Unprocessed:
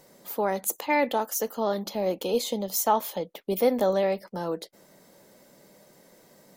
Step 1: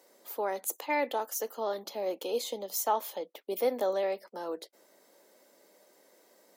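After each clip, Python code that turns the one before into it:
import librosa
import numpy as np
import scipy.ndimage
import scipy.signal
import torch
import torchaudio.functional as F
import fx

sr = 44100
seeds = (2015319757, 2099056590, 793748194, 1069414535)

y = scipy.signal.sosfilt(scipy.signal.butter(4, 290.0, 'highpass', fs=sr, output='sos'), x)
y = y * 10.0 ** (-5.5 / 20.0)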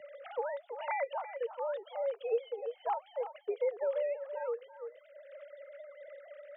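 y = fx.sine_speech(x, sr)
y = y + 10.0 ** (-14.0 / 20.0) * np.pad(y, (int(333 * sr / 1000.0), 0))[:len(y)]
y = fx.band_squash(y, sr, depth_pct=70)
y = y * 10.0 ** (-2.0 / 20.0)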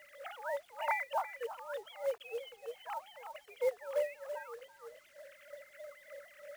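y = fx.filter_lfo_highpass(x, sr, shape='sine', hz=3.2, low_hz=620.0, high_hz=2100.0, q=0.94)
y = fx.quant_companded(y, sr, bits=6)
y = y * 10.0 ** (3.5 / 20.0)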